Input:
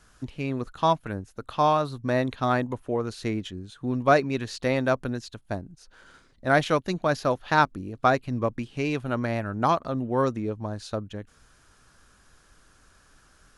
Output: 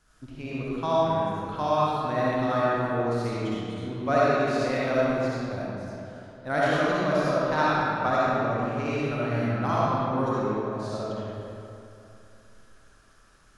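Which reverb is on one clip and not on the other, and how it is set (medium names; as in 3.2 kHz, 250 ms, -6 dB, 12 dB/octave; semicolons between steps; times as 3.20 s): algorithmic reverb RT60 2.8 s, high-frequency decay 0.65×, pre-delay 25 ms, DRR -8.5 dB; trim -9 dB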